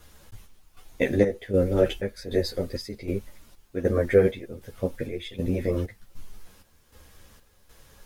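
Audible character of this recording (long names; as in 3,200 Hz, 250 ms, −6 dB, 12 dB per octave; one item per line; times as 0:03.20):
chopped level 1.3 Hz, depth 65%, duty 60%
a quantiser's noise floor 12 bits, dither none
a shimmering, thickened sound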